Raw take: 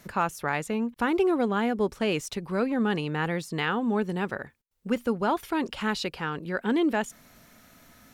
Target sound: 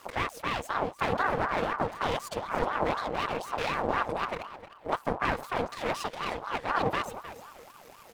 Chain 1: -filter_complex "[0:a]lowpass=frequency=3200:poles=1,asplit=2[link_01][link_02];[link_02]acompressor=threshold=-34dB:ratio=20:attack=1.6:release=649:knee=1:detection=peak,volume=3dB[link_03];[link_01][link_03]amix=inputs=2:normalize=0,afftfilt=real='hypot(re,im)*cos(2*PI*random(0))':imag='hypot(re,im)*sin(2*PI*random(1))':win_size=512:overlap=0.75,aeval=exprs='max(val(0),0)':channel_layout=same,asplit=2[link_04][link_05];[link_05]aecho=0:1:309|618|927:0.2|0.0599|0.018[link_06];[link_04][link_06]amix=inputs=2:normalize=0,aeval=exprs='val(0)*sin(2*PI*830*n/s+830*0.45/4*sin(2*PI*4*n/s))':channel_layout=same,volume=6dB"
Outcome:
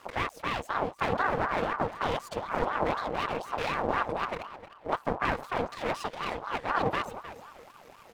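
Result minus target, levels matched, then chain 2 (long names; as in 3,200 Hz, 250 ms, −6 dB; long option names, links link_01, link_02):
8,000 Hz band −4.0 dB
-filter_complex "[0:a]lowpass=frequency=12000:poles=1,asplit=2[link_01][link_02];[link_02]acompressor=threshold=-34dB:ratio=20:attack=1.6:release=649:knee=1:detection=peak,volume=3dB[link_03];[link_01][link_03]amix=inputs=2:normalize=0,afftfilt=real='hypot(re,im)*cos(2*PI*random(0))':imag='hypot(re,im)*sin(2*PI*random(1))':win_size=512:overlap=0.75,aeval=exprs='max(val(0),0)':channel_layout=same,asplit=2[link_04][link_05];[link_05]aecho=0:1:309|618|927:0.2|0.0599|0.018[link_06];[link_04][link_06]amix=inputs=2:normalize=0,aeval=exprs='val(0)*sin(2*PI*830*n/s+830*0.45/4*sin(2*PI*4*n/s))':channel_layout=same,volume=6dB"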